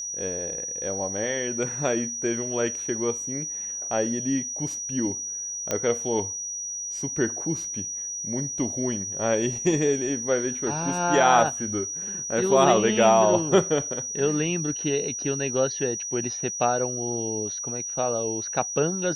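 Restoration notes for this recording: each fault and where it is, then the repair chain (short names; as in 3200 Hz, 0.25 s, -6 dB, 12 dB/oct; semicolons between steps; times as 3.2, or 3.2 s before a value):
tone 5800 Hz -30 dBFS
5.71 pop -10 dBFS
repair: de-click; notch 5800 Hz, Q 30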